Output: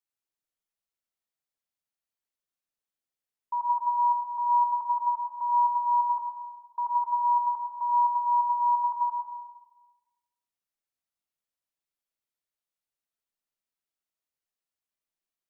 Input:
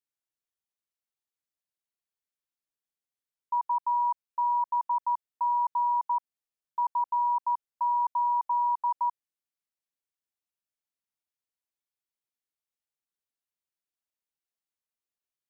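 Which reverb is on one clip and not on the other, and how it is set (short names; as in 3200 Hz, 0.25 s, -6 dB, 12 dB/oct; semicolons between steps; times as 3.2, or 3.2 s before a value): digital reverb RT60 1.2 s, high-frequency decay 0.45×, pre-delay 45 ms, DRR 1.5 dB; gain -2 dB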